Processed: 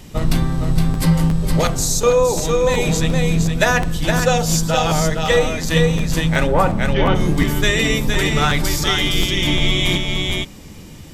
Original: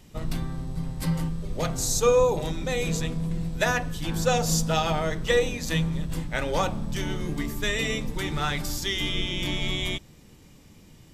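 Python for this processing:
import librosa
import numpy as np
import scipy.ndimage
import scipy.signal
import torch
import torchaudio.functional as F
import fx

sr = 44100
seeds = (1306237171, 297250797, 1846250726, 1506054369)

y = fx.lowpass(x, sr, hz=fx.line((6.46, 1700.0), (7.14, 4100.0)), slope=24, at=(6.46, 7.14), fade=0.02)
y = y + 10.0 ** (-5.0 / 20.0) * np.pad(y, (int(465 * sr / 1000.0), 0))[:len(y)]
y = fx.rider(y, sr, range_db=4, speed_s=0.5)
y = fx.buffer_crackle(y, sr, first_s=0.93, period_s=0.36, block=512, kind='repeat')
y = y * 10.0 ** (8.5 / 20.0)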